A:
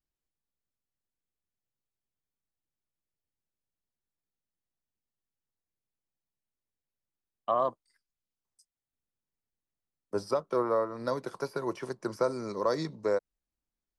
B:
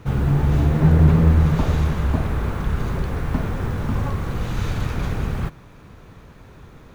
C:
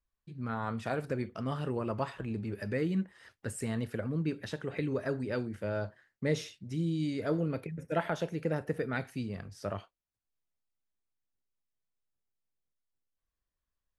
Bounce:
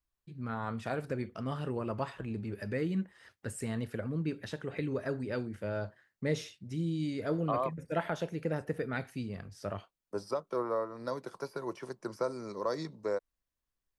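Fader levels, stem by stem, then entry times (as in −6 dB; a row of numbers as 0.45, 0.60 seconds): −5.0 dB, muted, −1.5 dB; 0.00 s, muted, 0.00 s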